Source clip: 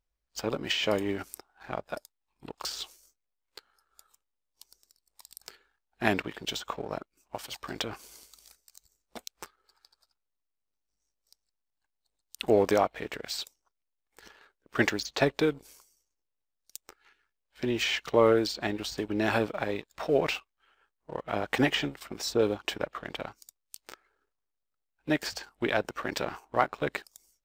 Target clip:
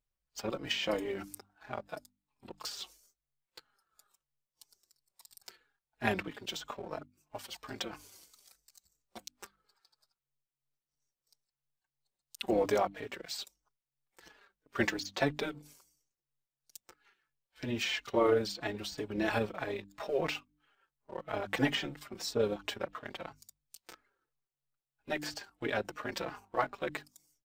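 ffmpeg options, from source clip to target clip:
-filter_complex "[0:a]tremolo=f=140:d=0.462,bandreject=f=49.99:t=h:w=4,bandreject=f=99.98:t=h:w=4,bandreject=f=149.97:t=h:w=4,bandreject=f=199.96:t=h:w=4,bandreject=f=249.95:t=h:w=4,bandreject=f=299.94:t=h:w=4,asplit=2[a][b];[b]adelay=4.3,afreqshift=-3[c];[a][c]amix=inputs=2:normalize=1"

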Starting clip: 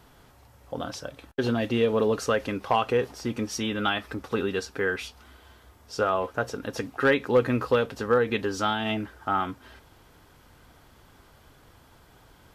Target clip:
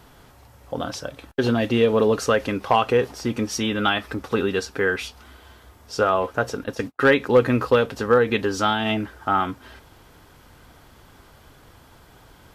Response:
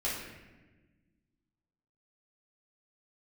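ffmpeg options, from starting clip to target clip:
-filter_complex "[0:a]asplit=3[a][b][c];[a]afade=t=out:st=6.63:d=0.02[d];[b]agate=range=-41dB:threshold=-34dB:ratio=16:detection=peak,afade=t=in:st=6.63:d=0.02,afade=t=out:st=7.84:d=0.02[e];[c]afade=t=in:st=7.84:d=0.02[f];[d][e][f]amix=inputs=3:normalize=0,volume=5dB"

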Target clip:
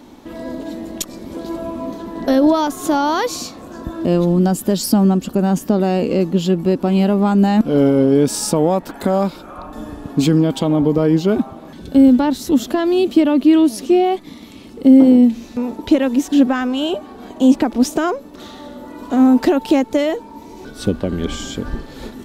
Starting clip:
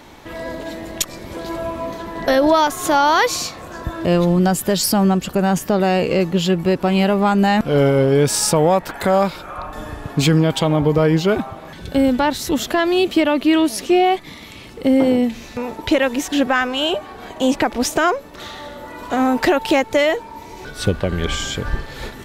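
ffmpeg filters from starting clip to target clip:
-af "equalizer=f=125:t=o:w=1:g=-4,equalizer=f=250:t=o:w=1:g=12,equalizer=f=2k:t=o:w=1:g=-6,volume=-3.5dB"

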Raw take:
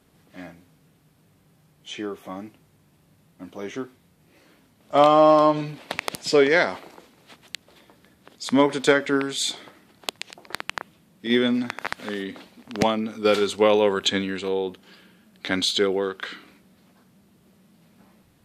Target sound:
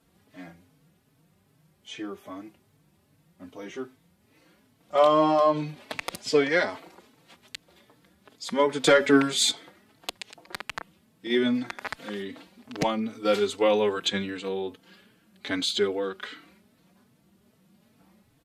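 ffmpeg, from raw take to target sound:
-filter_complex "[0:a]asettb=1/sr,asplit=3[a][b][c];[a]atrim=end=8.834[d];[b]atrim=start=8.83:end=9.51,asetpts=PTS-STARTPTS,afade=t=in:d=0.004:c=qsin,afade=t=out:st=0.676:d=0.004:c=qsin,acontrast=88[e];[c]atrim=start=9.506[f];[d][e]acrossfade=d=0.004:c1=hsin:c2=qsin[g];[g][f]acrossfade=d=0.004:c1=qsin:c2=hsin,asplit=2[h][i];[i]adelay=4,afreqshift=2.5[j];[h][j]amix=inputs=2:normalize=1,volume=-1.5dB"

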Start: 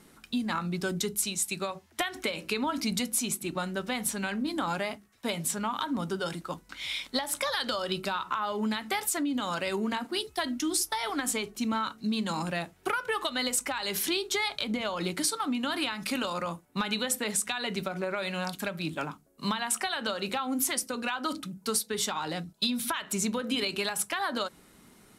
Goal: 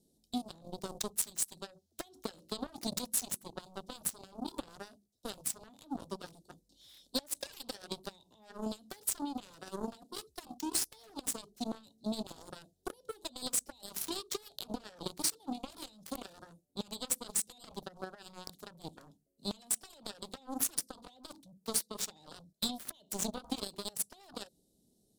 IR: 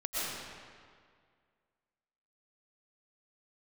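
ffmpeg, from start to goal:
-af "asuperstop=centerf=1600:order=8:qfactor=0.52,aeval=exprs='0.168*(cos(1*acos(clip(val(0)/0.168,-1,1)))-cos(1*PI/2))+0.0299*(cos(7*acos(clip(val(0)/0.168,-1,1)))-cos(7*PI/2))':c=same,volume=-2.5dB"

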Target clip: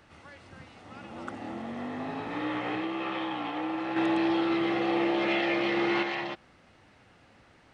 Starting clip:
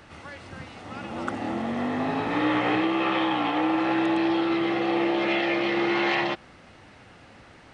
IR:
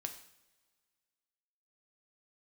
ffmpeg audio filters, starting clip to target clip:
-filter_complex "[0:a]asettb=1/sr,asplit=3[a][b][c];[a]atrim=end=3.964[d];[b]atrim=start=3.96:end=6.03,asetpts=PTS-STARTPTS,afade=t=in:d=0.004:c=qsin,afade=t=out:st=2.066:d=0.004:c=qsin,acontrast=51[e];[c]atrim=start=6.026[f];[d][e]acrossfade=d=0.004:c1=hsin:c2=qsin[g];[g][f]acrossfade=d=0.004:c1=qsin:c2=hsin,volume=-8.5dB"

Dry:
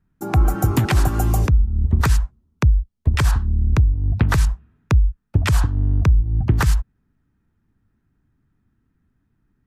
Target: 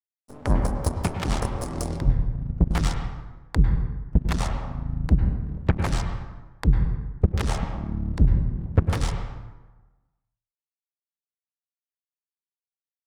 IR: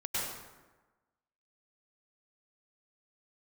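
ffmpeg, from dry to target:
-filter_complex "[0:a]asetrate=32634,aresample=44100,aeval=exprs='0.447*(cos(1*acos(clip(val(0)/0.447,-1,1)))-cos(1*PI/2))+0.2*(cos(3*acos(clip(val(0)/0.447,-1,1)))-cos(3*PI/2))+0.0355*(cos(5*acos(clip(val(0)/0.447,-1,1)))-cos(5*PI/2))+0.0224*(cos(7*acos(clip(val(0)/0.447,-1,1)))-cos(7*PI/2))+0.0158*(cos(8*acos(clip(val(0)/0.447,-1,1)))-cos(8*PI/2))':c=same,aeval=exprs='sgn(val(0))*max(abs(val(0))-0.00422,0)':c=same,asplit=2[a][b];[1:a]atrim=start_sample=2205,lowpass=2.6k[c];[b][c]afir=irnorm=-1:irlink=0,volume=-7.5dB[d];[a][d]amix=inputs=2:normalize=0,volume=-4dB"

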